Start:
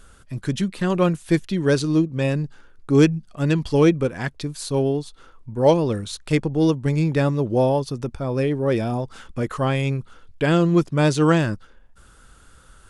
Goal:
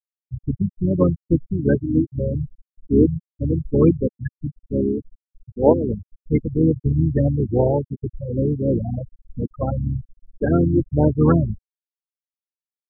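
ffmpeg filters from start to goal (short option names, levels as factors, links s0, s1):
-filter_complex "[0:a]asplit=4[s0][s1][s2][s3];[s1]asetrate=22050,aresample=44100,atempo=2,volume=0.631[s4];[s2]asetrate=33038,aresample=44100,atempo=1.33484,volume=0.316[s5];[s3]asetrate=37084,aresample=44100,atempo=1.18921,volume=0.398[s6];[s0][s4][s5][s6]amix=inputs=4:normalize=0,afftfilt=real='re*gte(hypot(re,im),0.355)':imag='im*gte(hypot(re,im),0.355)':win_size=1024:overlap=0.75,volume=0.891"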